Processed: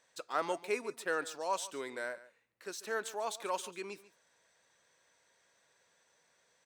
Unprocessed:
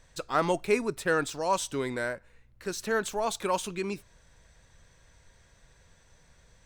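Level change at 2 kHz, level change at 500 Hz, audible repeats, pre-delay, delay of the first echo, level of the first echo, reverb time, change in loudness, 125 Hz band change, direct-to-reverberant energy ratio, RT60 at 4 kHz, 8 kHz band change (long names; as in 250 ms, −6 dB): −7.0 dB, −8.5 dB, 1, no reverb audible, 142 ms, −17.5 dB, no reverb audible, −8.0 dB, below −20 dB, no reverb audible, no reverb audible, −7.0 dB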